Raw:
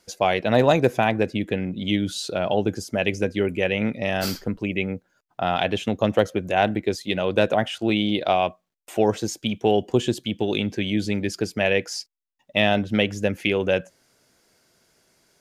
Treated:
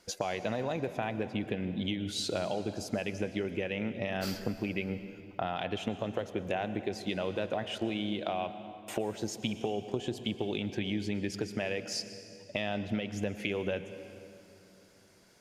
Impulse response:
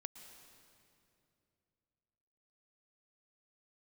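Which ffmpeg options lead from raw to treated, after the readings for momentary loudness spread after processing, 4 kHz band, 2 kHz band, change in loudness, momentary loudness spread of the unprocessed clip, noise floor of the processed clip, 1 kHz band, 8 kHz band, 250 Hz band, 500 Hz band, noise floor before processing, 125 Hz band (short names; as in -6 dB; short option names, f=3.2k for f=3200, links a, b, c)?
5 LU, -10.0 dB, -12.5 dB, -11.5 dB, 7 LU, -58 dBFS, -13.0 dB, -7.0 dB, -10.0 dB, -12.5 dB, -74 dBFS, -10.5 dB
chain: -filter_complex "[0:a]highshelf=f=6.4k:g=-5.5,alimiter=limit=-13dB:level=0:latency=1:release=268,acompressor=threshold=-31dB:ratio=6,asplit=2[a][b];[1:a]atrim=start_sample=2205[c];[b][c]afir=irnorm=-1:irlink=0,volume=10dB[d];[a][d]amix=inputs=2:normalize=0,volume=-8dB"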